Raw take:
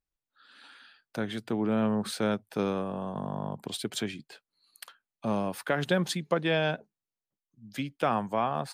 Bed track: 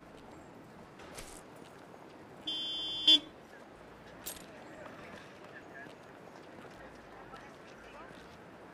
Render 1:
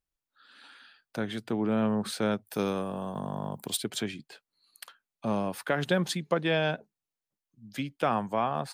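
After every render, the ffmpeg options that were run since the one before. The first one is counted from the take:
-filter_complex "[0:a]asplit=3[s0][s1][s2];[s0]afade=t=out:st=2.45:d=0.02[s3];[s1]aemphasis=mode=production:type=50fm,afade=t=in:st=2.45:d=0.02,afade=t=out:st=3.76:d=0.02[s4];[s2]afade=t=in:st=3.76:d=0.02[s5];[s3][s4][s5]amix=inputs=3:normalize=0"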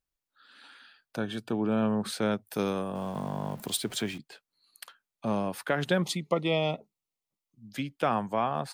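-filter_complex "[0:a]asettb=1/sr,asplit=3[s0][s1][s2];[s0]atrim=end=1.164[s3];[s1]atrim=start=1.16:end=2,asetpts=PTS-STARTPTS,afade=t=in:d=0.004:c=qsin,afade=t=out:st=0.836:d=0.004:c=qsin,asuperstop=centerf=2000:order=20:qfactor=5.4[s4];[s2]atrim=start=1.996[s5];[s3][s4]acrossfade=d=0.004:c1=hsin:c2=qsin[s6];[s6][s5]acrossfade=d=0.004:c1=qsin:c2=hsin,asettb=1/sr,asplit=3[s7][s8][s9];[s7]atrim=end=2.954[s10];[s8]atrim=start=2.95:end=4.18,asetpts=PTS-STARTPTS,afade=t=in:d=0.004:c=qsin,afade=t=out:st=1.226:d=0.004:c=qsin,aeval=exprs='val(0)+0.5*0.00631*sgn(val(0))':c=same[s11];[s9]atrim=start=4.176[s12];[s10][s11]acrossfade=d=0.004:c1=hsin:c2=qsin[s13];[s13][s12]acrossfade=d=0.004:c1=qsin:c2=hsin,asettb=1/sr,asplit=3[s14][s15][s16];[s14]atrim=end=6.024[s17];[s15]atrim=start=6.02:end=7.73,asetpts=PTS-STARTPTS,afade=t=in:d=0.004:c=qsin,afade=t=out:st=1.706:d=0.004:c=qsin,asuperstop=centerf=1600:order=20:qfactor=3.2[s18];[s16]atrim=start=7.726[s19];[s17][s18]acrossfade=d=0.004:c1=hsin:c2=qsin[s20];[s20][s19]acrossfade=d=0.004:c1=qsin:c2=hsin"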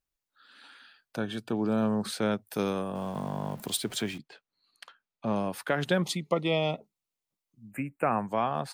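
-filter_complex "[0:a]asettb=1/sr,asplit=3[s0][s1][s2];[s0]atrim=end=1.564[s3];[s1]atrim=start=1.56:end=2.06,asetpts=PTS-STARTPTS,afade=t=in:d=0.004:c=qsin,afade=t=out:st=0.496:d=0.004:c=qsin,highshelf=f=3700:t=q:w=3:g=6.5[s4];[s2]atrim=start=2.056[s5];[s3][s4]acrossfade=d=0.004:c1=hsin:c2=qsin[s6];[s6][s5]acrossfade=d=0.004:c1=qsin:c2=hsin,asettb=1/sr,asplit=3[s7][s8][s9];[s7]atrim=end=4.224[s10];[s8]atrim=start=4.22:end=5.36,asetpts=PTS-STARTPTS,afade=t=in:d=0.004:c=qsin,afade=t=out:st=1.136:d=0.004:c=qsin,adynamicsmooth=sensitivity=3:basefreq=5200[s11];[s9]atrim=start=5.356[s12];[s10][s11]acrossfade=d=0.004:c1=hsin:c2=qsin[s13];[s13][s12]acrossfade=d=0.004:c1=qsin:c2=hsin,asettb=1/sr,asplit=3[s14][s15][s16];[s14]atrim=end=7.714[s17];[s15]atrim=start=7.71:end=8.28,asetpts=PTS-STARTPTS,afade=t=in:d=0.004:c=qsin,afade=t=out:st=0.566:d=0.004:c=qsin,asuperstop=centerf=4500:order=20:qfactor=0.99[s18];[s16]atrim=start=8.276[s19];[s17][s18]acrossfade=d=0.004:c1=hsin:c2=qsin[s20];[s20][s19]acrossfade=d=0.004:c1=qsin:c2=hsin"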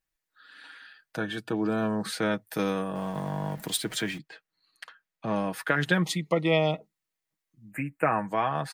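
-af "equalizer=f=1800:t=o:w=0.52:g=8,aecho=1:1:6.3:0.57"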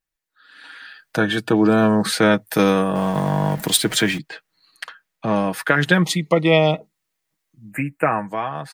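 -af "dynaudnorm=f=120:g=13:m=4.73"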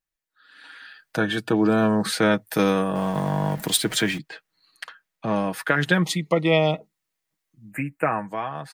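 -af "volume=0.631"

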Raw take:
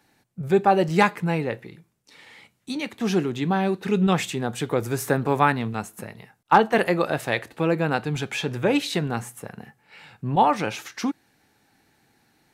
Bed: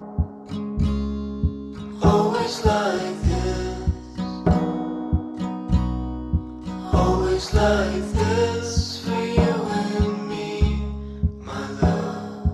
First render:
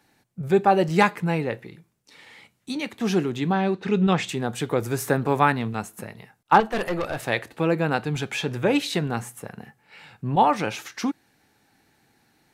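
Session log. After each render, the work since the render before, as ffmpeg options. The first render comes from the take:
-filter_complex "[0:a]asettb=1/sr,asplit=3[s0][s1][s2];[s0]atrim=end=3.524[s3];[s1]atrim=start=3.52:end=4.29,asetpts=PTS-STARTPTS,afade=t=in:d=0.004:c=qsin,afade=t=out:st=0.766:d=0.004:c=qsin,lowpass=5600[s4];[s2]atrim=start=4.286[s5];[s3][s4]acrossfade=d=0.004:c1=hsin:c2=qsin[s6];[s6][s5]acrossfade=d=0.004:c1=qsin:c2=hsin,asettb=1/sr,asplit=3[s7][s8][s9];[s7]atrim=end=6.604[s10];[s8]atrim=start=6.6:end=7.23,asetpts=PTS-STARTPTS,afade=t=in:d=0.004:c=qsin,afade=t=out:st=0.626:d=0.004:c=qsin,aeval=exprs='(tanh(11.2*val(0)+0.35)-tanh(0.35))/11.2':c=same[s11];[s9]atrim=start=7.226[s12];[s10][s11]acrossfade=d=0.004:c1=hsin:c2=qsin[s13];[s13][s12]acrossfade=d=0.004:c1=qsin:c2=hsin"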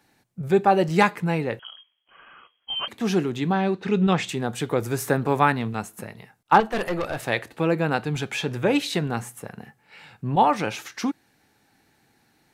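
-filter_complex "[0:a]asettb=1/sr,asplit=3[s0][s1][s2];[s0]atrim=end=1.594[s3];[s1]atrim=start=1.59:end=2.88,asetpts=PTS-STARTPTS,afade=t=in:d=0.004:c=qsin,afade=t=out:st=1.286:d=0.004:c=qsin,lowpass=f=2900:t=q:w=0.5098,lowpass=f=2900:t=q:w=0.6013,lowpass=f=2900:t=q:w=0.9,lowpass=f=2900:t=q:w=2.563,afreqshift=-3400[s4];[s2]atrim=start=2.876[s5];[s3][s4]acrossfade=d=0.004:c1=hsin:c2=qsin[s6];[s6][s5]acrossfade=d=0.004:c1=qsin:c2=hsin"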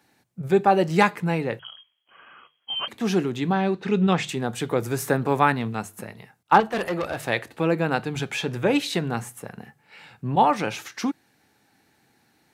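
-af "highpass=60,bandreject=f=50:t=h:w=6,bandreject=f=100:t=h:w=6,bandreject=f=150:t=h:w=6"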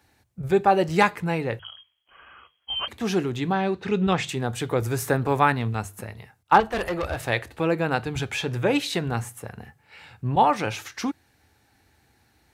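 -af "lowshelf=f=110:t=q:w=1.5:g=13.5"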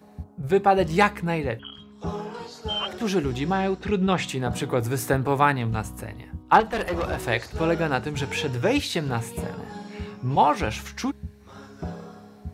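-filter_complex "[1:a]volume=0.188[s0];[0:a][s0]amix=inputs=2:normalize=0"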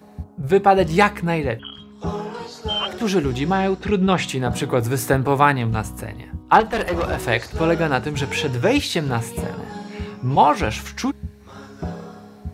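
-af "volume=1.68,alimiter=limit=0.891:level=0:latency=1"

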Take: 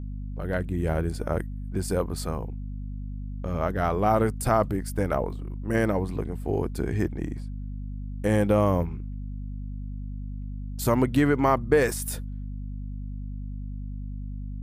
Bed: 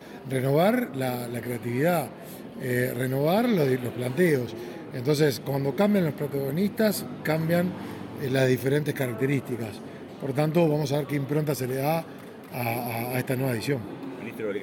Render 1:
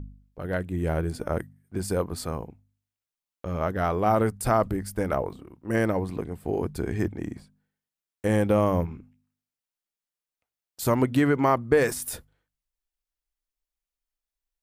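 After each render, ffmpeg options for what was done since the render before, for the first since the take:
-af "bandreject=f=50:t=h:w=4,bandreject=f=100:t=h:w=4,bandreject=f=150:t=h:w=4,bandreject=f=200:t=h:w=4,bandreject=f=250:t=h:w=4"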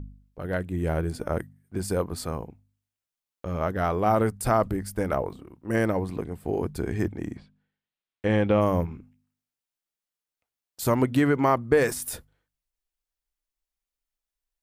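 -filter_complex "[0:a]asplit=3[s0][s1][s2];[s0]afade=t=out:st=7.36:d=0.02[s3];[s1]lowpass=f=3300:t=q:w=1.5,afade=t=in:st=7.36:d=0.02,afade=t=out:st=8.6:d=0.02[s4];[s2]afade=t=in:st=8.6:d=0.02[s5];[s3][s4][s5]amix=inputs=3:normalize=0"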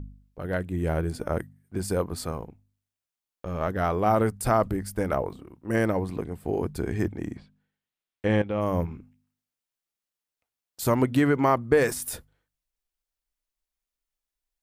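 -filter_complex "[0:a]asettb=1/sr,asplit=3[s0][s1][s2];[s0]atrim=end=2.314[s3];[s1]atrim=start=2.31:end=3.68,asetpts=PTS-STARTPTS,afade=t=in:d=0.004:c=qsin,afade=t=out:st=1.366:d=0.004:c=qsin,aeval=exprs='if(lt(val(0),0),0.708*val(0),val(0))':c=same[s4];[s2]atrim=start=3.676[s5];[s3][s4]acrossfade=d=0.004:c1=hsin:c2=qsin[s6];[s6][s5]acrossfade=d=0.004:c1=qsin:c2=hsin,asplit=2[s7][s8];[s7]atrim=end=8.42,asetpts=PTS-STARTPTS,afade=t=out:st=8.416:d=0.004:c=hsin:silence=0.211349[s9];[s8]atrim=start=8.42,asetpts=PTS-STARTPTS,afade=t=in:d=0.43:silence=0.211349[s10];[s9][s10]concat=n=2:v=0:a=1"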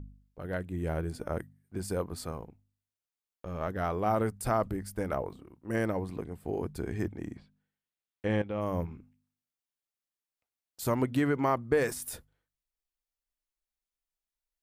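-af "volume=0.501"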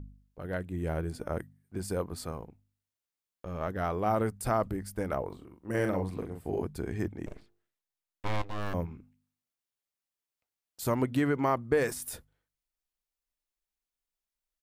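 -filter_complex "[0:a]asplit=3[s0][s1][s2];[s0]afade=t=out:st=5.3:d=0.02[s3];[s1]asplit=2[s4][s5];[s5]adelay=42,volume=0.562[s6];[s4][s6]amix=inputs=2:normalize=0,afade=t=in:st=5.3:d=0.02,afade=t=out:st=6.62:d=0.02[s7];[s2]afade=t=in:st=6.62:d=0.02[s8];[s3][s7][s8]amix=inputs=3:normalize=0,asettb=1/sr,asplit=3[s9][s10][s11];[s9]atrim=end=7.264[s12];[s10]atrim=start=7.26:end=8.74,asetpts=PTS-STARTPTS,afade=t=in:d=0.004:c=qsin,afade=t=out:st=1.476:d=0.004:c=qsin,aeval=exprs='abs(val(0))':c=same[s13];[s11]atrim=start=8.736[s14];[s12][s13]acrossfade=d=0.004:c1=hsin:c2=qsin[s15];[s15][s14]acrossfade=d=0.004:c1=qsin:c2=hsin"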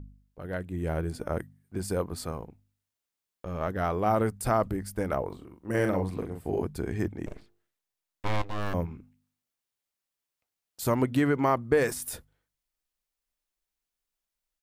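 -af "dynaudnorm=f=520:g=3:m=1.41"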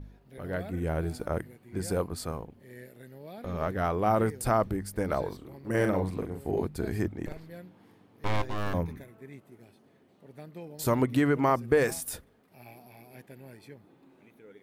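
-filter_complex "[1:a]volume=0.0794[s0];[0:a][s0]amix=inputs=2:normalize=0"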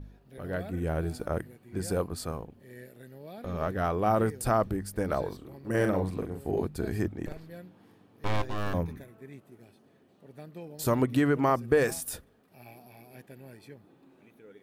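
-af "equalizer=f=930:w=7.5:g=-2.5,bandreject=f=2100:w=15"

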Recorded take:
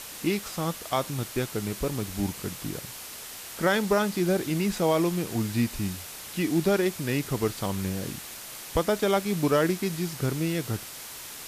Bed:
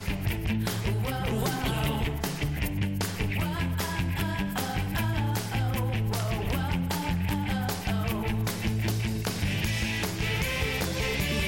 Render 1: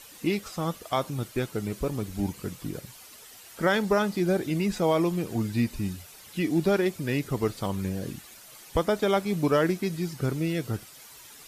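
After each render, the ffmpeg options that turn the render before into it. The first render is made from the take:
-af "afftdn=nr=11:nf=-41"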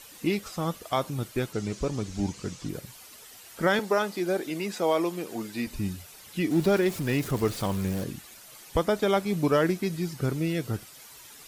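-filter_complex "[0:a]asettb=1/sr,asplit=3[s0][s1][s2];[s0]atrim=end=1.534[s3];[s1]atrim=start=1.53:end=2.69,asetpts=PTS-STARTPTS,afade=t=in:d=0.004:c=qsin,afade=t=out:st=1.156:d=0.004:c=qsin,lowpass=f=6400:t=q:w=2[s4];[s2]atrim=start=2.686[s5];[s3][s4]acrossfade=d=0.004:c1=hsin:c2=qsin[s6];[s6][s5]acrossfade=d=0.004:c1=qsin:c2=hsin,asettb=1/sr,asplit=3[s7][s8][s9];[s7]atrim=end=3.794[s10];[s8]atrim=start=3.79:end=5.67,asetpts=PTS-STARTPTS,afade=t=in:d=0.004:c=qsin,afade=t=out:st=1.876:d=0.004:c=qsin,highpass=310[s11];[s9]atrim=start=5.666[s12];[s10][s11]acrossfade=d=0.004:c1=hsin:c2=qsin[s13];[s13][s12]acrossfade=d=0.004:c1=qsin:c2=hsin,asettb=1/sr,asplit=3[s14][s15][s16];[s14]atrim=end=6.514[s17];[s15]atrim=start=6.51:end=8.04,asetpts=PTS-STARTPTS,afade=t=in:d=0.004:c=qsin,afade=t=out:st=1.526:d=0.004:c=qsin,aeval=exprs='val(0)+0.5*0.0168*sgn(val(0))':c=same[s18];[s16]atrim=start=8.036[s19];[s17][s18]acrossfade=d=0.004:c1=hsin:c2=qsin[s20];[s20][s19]acrossfade=d=0.004:c1=qsin:c2=hsin"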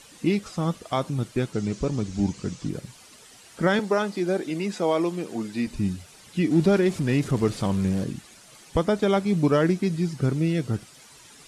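-af "lowpass=f=10000:w=0.5412,lowpass=f=10000:w=1.3066,equalizer=f=180:t=o:w=1.9:g=6"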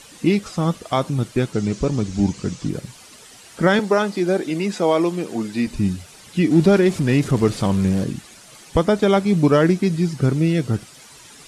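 -af "volume=1.88"

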